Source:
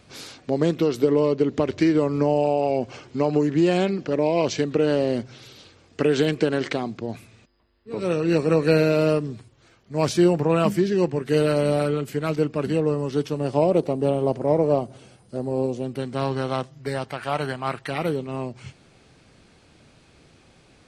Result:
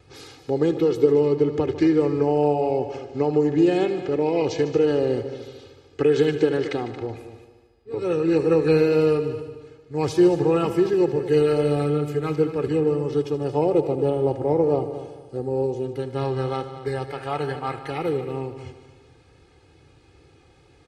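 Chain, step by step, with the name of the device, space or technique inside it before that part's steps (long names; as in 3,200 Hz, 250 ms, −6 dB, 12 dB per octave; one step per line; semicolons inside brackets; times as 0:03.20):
high-pass filter 57 Hz
spectral tilt −1.5 dB per octave
comb filter 2.4 ms, depth 78%
multi-head tape echo (echo machine with several playback heads 75 ms, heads all three, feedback 44%, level −15.5 dB; tape wow and flutter 21 cents)
level −4 dB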